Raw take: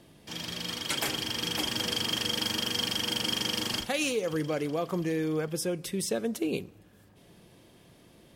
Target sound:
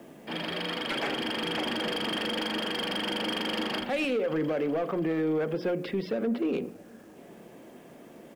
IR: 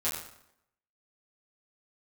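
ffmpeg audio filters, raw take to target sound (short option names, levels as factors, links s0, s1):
-filter_complex "[0:a]acrossover=split=100|1100[s0][s1][s2];[s1]acontrast=45[s3];[s0][s3][s2]amix=inputs=3:normalize=0,aresample=11025,aresample=44100,adynamicsmooth=sensitivity=6:basefreq=3000,asplit=2[s4][s5];[s5]highpass=f=720:p=1,volume=6.31,asoftclip=type=tanh:threshold=0.224[s6];[s4][s6]amix=inputs=2:normalize=0,lowpass=f=2500:p=1,volume=0.501,acrusher=bits=9:mix=0:aa=0.000001,equalizer=f=240:w=6.5:g=7.5,bandreject=f=60:t=h:w=6,bandreject=f=120:t=h:w=6,bandreject=f=180:t=h:w=6,bandreject=f=240:t=h:w=6,bandreject=f=300:t=h:w=6,bandreject=f=360:t=h:w=6,bandreject=f=420:t=h:w=6,bandreject=f=480:t=h:w=6,bandreject=f=540:t=h:w=6,alimiter=limit=0.0891:level=0:latency=1:release=58,equalizer=f=100:t=o:w=0.67:g=-9,equalizer=f=1000:t=o:w=0.67:g=-5,equalizer=f=4000:t=o:w=0.67:g=-5,asplit=2[s7][s8];[s8]adelay=641.4,volume=0.0447,highshelf=f=4000:g=-14.4[s9];[s7][s9]amix=inputs=2:normalize=0"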